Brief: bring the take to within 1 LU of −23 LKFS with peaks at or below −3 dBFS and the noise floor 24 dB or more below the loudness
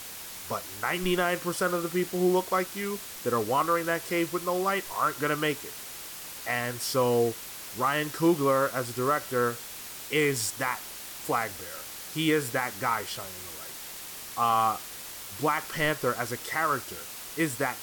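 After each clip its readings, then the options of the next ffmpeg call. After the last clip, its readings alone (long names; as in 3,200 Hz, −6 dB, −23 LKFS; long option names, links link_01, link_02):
background noise floor −41 dBFS; target noise floor −53 dBFS; integrated loudness −29.0 LKFS; sample peak −13.5 dBFS; target loudness −23.0 LKFS
→ -af "afftdn=noise_reduction=12:noise_floor=-41"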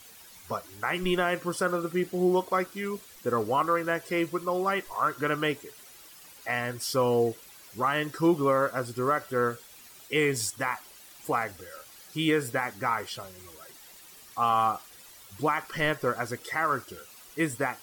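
background noise floor −51 dBFS; target noise floor −53 dBFS
→ -af "afftdn=noise_reduction=6:noise_floor=-51"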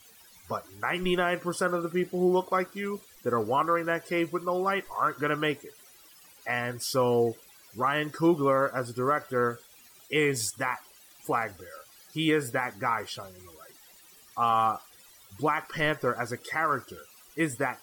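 background noise floor −55 dBFS; integrated loudness −28.5 LKFS; sample peak −14.5 dBFS; target loudness −23.0 LKFS
→ -af "volume=5.5dB"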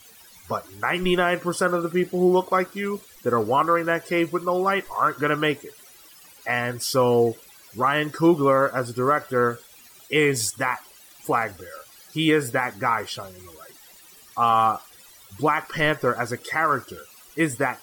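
integrated loudness −23.0 LKFS; sample peak −9.0 dBFS; background noise floor −50 dBFS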